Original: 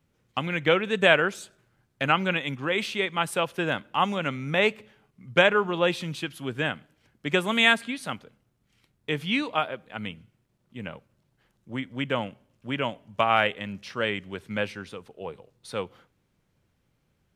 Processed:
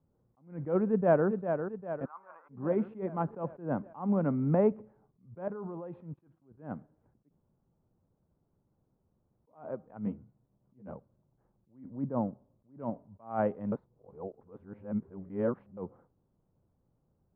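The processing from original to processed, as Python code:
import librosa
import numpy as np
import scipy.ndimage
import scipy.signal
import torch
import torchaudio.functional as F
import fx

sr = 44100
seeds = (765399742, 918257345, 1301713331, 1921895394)

y = fx.echo_throw(x, sr, start_s=0.88, length_s=0.4, ms=400, feedback_pct=60, wet_db=-7.0)
y = fx.ladder_bandpass(y, sr, hz=1200.0, resonance_pct=65, at=(2.04, 2.49), fade=0.02)
y = fx.band_squash(y, sr, depth_pct=40, at=(3.28, 4.72))
y = fx.level_steps(y, sr, step_db=19, at=(5.41, 6.57), fade=0.02)
y = fx.doubler(y, sr, ms=15.0, db=-3.5, at=(10.05, 10.93))
y = fx.lowpass(y, sr, hz=1400.0, slope=12, at=(11.9, 12.8))
y = fx.edit(y, sr, fx.room_tone_fill(start_s=7.29, length_s=2.19, crossfade_s=0.02),
    fx.reverse_span(start_s=13.72, length_s=2.05), tone=tone)
y = scipy.signal.sosfilt(scipy.signal.butter(4, 1000.0, 'lowpass', fs=sr, output='sos'), y)
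y = fx.dynamic_eq(y, sr, hz=220.0, q=1.1, threshold_db=-41.0, ratio=4.0, max_db=7)
y = fx.attack_slew(y, sr, db_per_s=160.0)
y = y * librosa.db_to_amplitude(-2.5)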